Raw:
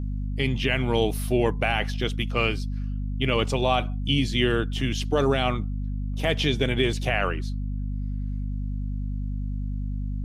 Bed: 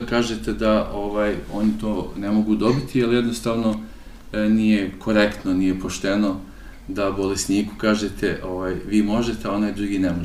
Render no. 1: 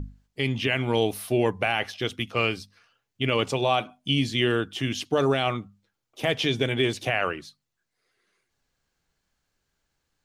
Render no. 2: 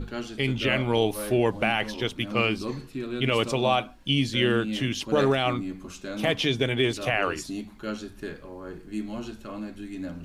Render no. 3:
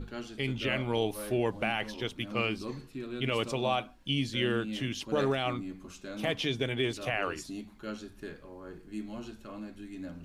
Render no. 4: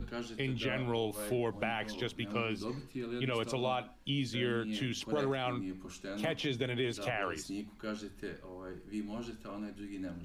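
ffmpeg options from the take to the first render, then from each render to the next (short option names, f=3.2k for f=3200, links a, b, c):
-af "bandreject=f=50:t=h:w=6,bandreject=f=100:t=h:w=6,bandreject=f=150:t=h:w=6,bandreject=f=200:t=h:w=6,bandreject=f=250:t=h:w=6"
-filter_complex "[1:a]volume=-14dB[a];[0:a][a]amix=inputs=2:normalize=0"
-af "volume=-6.5dB"
-filter_complex "[0:a]acrossover=split=230|1400|1900[a][b][c][d];[d]alimiter=level_in=6.5dB:limit=-24dB:level=0:latency=1:release=20,volume=-6.5dB[e];[a][b][c][e]amix=inputs=4:normalize=0,acompressor=threshold=-32dB:ratio=2"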